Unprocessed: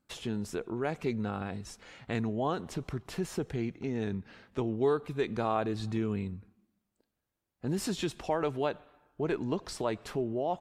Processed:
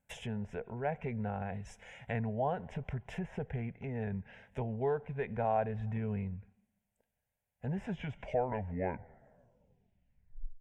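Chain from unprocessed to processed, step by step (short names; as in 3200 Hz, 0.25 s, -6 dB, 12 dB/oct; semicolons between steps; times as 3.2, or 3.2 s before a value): tape stop at the end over 2.80 s; treble ducked by the level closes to 1800 Hz, closed at -31.5 dBFS; fixed phaser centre 1200 Hz, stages 6; gain +1.5 dB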